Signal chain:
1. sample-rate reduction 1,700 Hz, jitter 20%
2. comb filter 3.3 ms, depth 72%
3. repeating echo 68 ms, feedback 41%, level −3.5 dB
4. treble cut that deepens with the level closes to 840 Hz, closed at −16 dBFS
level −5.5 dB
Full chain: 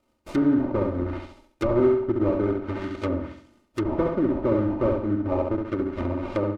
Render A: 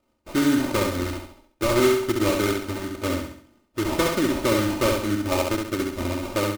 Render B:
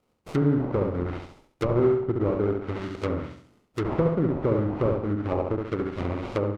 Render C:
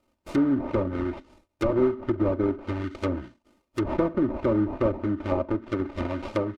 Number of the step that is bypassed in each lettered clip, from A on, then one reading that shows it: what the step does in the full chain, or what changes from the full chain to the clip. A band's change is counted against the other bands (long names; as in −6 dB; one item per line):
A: 4, 4 kHz band +18.0 dB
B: 2, 125 Hz band +4.0 dB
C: 3, change in momentary loudness spread −1 LU